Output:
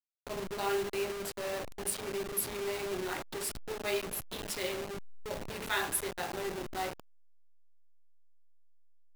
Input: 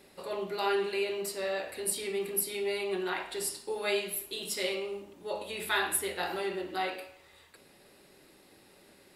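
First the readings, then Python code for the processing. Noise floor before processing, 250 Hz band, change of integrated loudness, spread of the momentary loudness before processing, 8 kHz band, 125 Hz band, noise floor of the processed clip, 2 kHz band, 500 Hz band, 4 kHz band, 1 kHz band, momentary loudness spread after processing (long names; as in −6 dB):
−60 dBFS, −1.5 dB, −3.0 dB, 8 LU, −2.5 dB, +4.5 dB, −56 dBFS, −3.5 dB, −3.5 dB, −4.0 dB, −2.5 dB, 7 LU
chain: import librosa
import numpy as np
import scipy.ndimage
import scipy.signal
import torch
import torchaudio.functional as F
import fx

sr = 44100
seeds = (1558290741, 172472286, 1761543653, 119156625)

y = fx.delta_hold(x, sr, step_db=-31.0)
y = F.gain(torch.from_numpy(y), -2.5).numpy()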